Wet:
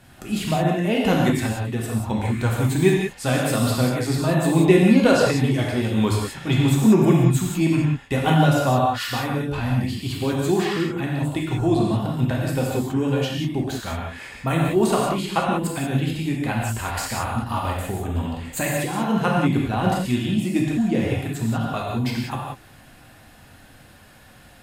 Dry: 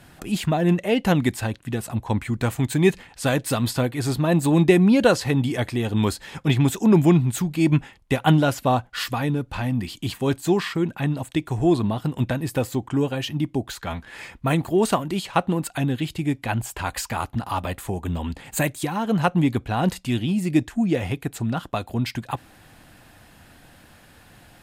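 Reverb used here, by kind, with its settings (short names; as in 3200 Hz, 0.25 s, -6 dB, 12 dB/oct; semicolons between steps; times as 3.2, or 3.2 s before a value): non-linear reverb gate 0.21 s flat, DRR -3 dB; gain -3 dB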